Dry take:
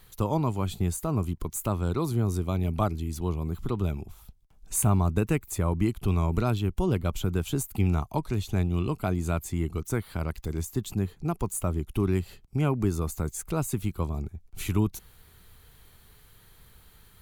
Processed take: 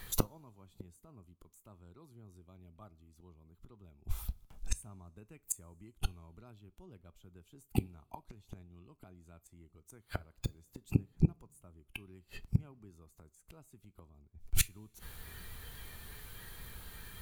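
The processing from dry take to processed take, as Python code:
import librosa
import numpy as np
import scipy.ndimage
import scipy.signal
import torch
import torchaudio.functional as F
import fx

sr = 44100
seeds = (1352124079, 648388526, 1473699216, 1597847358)

p1 = fx.gate_flip(x, sr, shuts_db=-26.0, range_db=-35)
p2 = 10.0 ** (-31.0 / 20.0) * np.tanh(p1 / 10.0 ** (-31.0 / 20.0))
p3 = p1 + (p2 * librosa.db_to_amplitude(-5.0))
p4 = fx.rev_double_slope(p3, sr, seeds[0], early_s=0.26, late_s=1.5, knee_db=-18, drr_db=15.5)
p5 = fx.noise_reduce_blind(p4, sr, reduce_db=8)
y = p5 * librosa.db_to_amplitude(9.5)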